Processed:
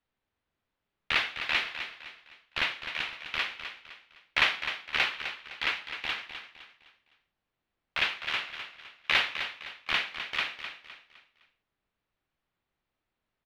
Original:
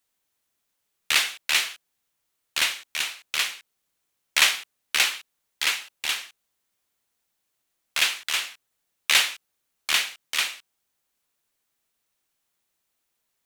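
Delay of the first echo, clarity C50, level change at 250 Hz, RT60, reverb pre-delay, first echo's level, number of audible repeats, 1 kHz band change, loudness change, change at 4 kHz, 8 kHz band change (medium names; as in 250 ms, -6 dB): 256 ms, no reverb, +2.0 dB, no reverb, no reverb, -9.5 dB, 3, -1.0 dB, -6.5 dB, -7.5 dB, -24.0 dB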